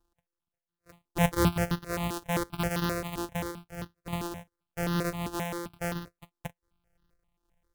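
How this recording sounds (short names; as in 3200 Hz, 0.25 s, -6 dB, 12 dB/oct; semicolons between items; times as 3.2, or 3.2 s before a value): a buzz of ramps at a fixed pitch in blocks of 256 samples; random-step tremolo; notches that jump at a steady rate 7.6 Hz 580–2300 Hz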